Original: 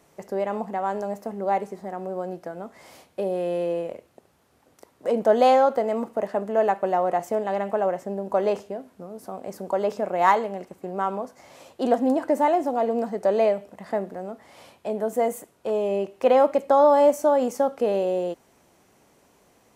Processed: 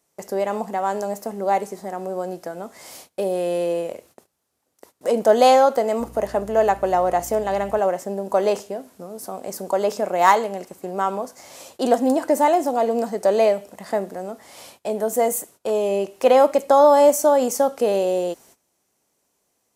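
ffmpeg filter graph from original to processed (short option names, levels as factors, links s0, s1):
-filter_complex "[0:a]asettb=1/sr,asplit=3[s0][s1][s2];[s0]atrim=end=6.004[s3];[s1]atrim=start=6:end=7.79,asetpts=PTS-STARTPTS,afade=t=in:d=0.004:c=qsin,afade=t=out:st=1.786:d=0.004:c=qsin,bandreject=f=7900:w=22,acompressor=mode=upward:threshold=0.0112:ratio=2.5:attack=3.2:release=140:knee=2.83:detection=peak,aeval=exprs='val(0)+0.00794*(sin(2*PI*60*n/s)+sin(2*PI*2*60*n/s)/2+sin(2*PI*3*60*n/s)/3+sin(2*PI*4*60*n/s)/4+sin(2*PI*5*60*n/s)/5)':c=same[s4];[s2]atrim=start=7.786[s5];[s3][s4]acrossfade=d=0.004:c1=hsin:c2=qsin[s6];[s6][s5]acrossfade=d=0.004:c1=qsin:c2=hsin,agate=range=0.126:threshold=0.00224:ratio=16:detection=peak,bass=f=250:g=-3,treble=f=4000:g=11,volume=1.5"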